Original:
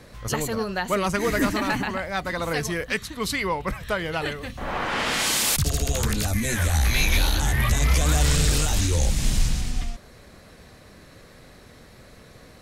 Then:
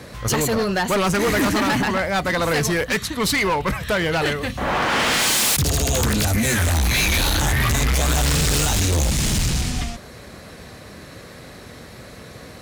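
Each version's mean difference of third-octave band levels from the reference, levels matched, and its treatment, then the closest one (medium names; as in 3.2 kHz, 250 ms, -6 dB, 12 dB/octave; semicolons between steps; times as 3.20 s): 3.0 dB: high-pass 60 Hz 12 dB/octave; hard clipper -25.5 dBFS, distortion -8 dB; trim +9 dB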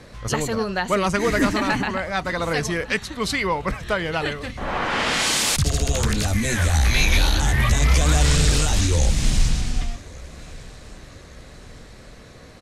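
2.0 dB: low-pass 8.9 kHz 12 dB/octave; feedback delay 1150 ms, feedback 52%, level -23 dB; trim +3 dB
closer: second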